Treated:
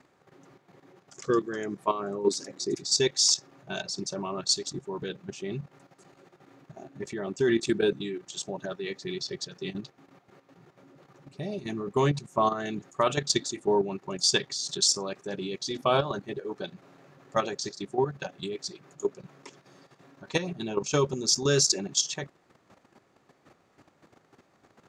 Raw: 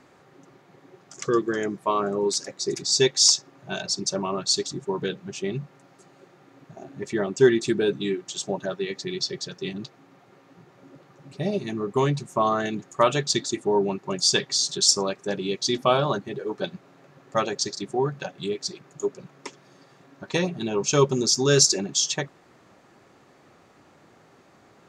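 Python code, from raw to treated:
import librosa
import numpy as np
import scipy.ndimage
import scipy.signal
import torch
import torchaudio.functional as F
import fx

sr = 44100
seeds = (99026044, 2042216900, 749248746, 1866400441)

y = fx.level_steps(x, sr, step_db=11)
y = fx.peak_eq(y, sr, hz=270.0, db=9.0, octaves=1.2, at=(2.27, 2.75))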